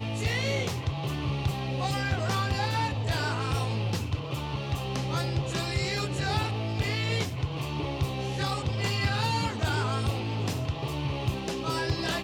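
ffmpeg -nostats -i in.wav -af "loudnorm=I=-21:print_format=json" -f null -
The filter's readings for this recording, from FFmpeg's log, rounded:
"input_i" : "-29.7",
"input_tp" : "-13.9",
"input_lra" : "0.9",
"input_thresh" : "-39.7",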